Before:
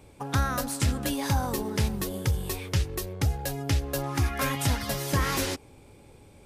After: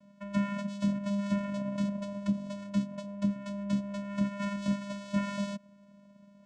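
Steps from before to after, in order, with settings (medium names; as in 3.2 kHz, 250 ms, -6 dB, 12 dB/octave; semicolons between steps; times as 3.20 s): comb filter that takes the minimum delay 3 ms; vocoder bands 4, square 201 Hz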